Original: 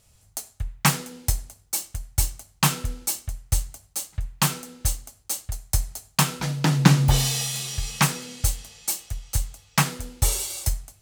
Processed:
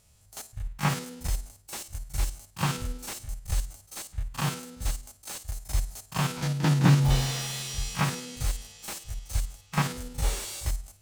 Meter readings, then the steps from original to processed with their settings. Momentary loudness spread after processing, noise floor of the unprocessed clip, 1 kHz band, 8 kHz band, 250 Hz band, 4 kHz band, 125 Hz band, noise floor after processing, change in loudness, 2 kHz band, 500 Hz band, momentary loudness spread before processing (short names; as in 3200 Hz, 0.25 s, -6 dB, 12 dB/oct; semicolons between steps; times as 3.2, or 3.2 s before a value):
14 LU, -59 dBFS, -5.0 dB, -9.5 dB, -3.5 dB, -7.0 dB, -3.0 dB, -59 dBFS, -5.5 dB, -5.5 dB, -2.5 dB, 10 LU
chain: stepped spectrum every 50 ms; reverse echo 41 ms -14.5 dB; slew limiter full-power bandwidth 140 Hz; gain -1.5 dB